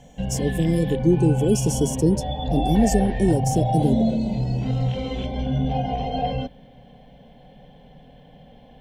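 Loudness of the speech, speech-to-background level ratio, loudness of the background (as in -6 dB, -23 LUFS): -22.5 LUFS, 3.0 dB, -25.5 LUFS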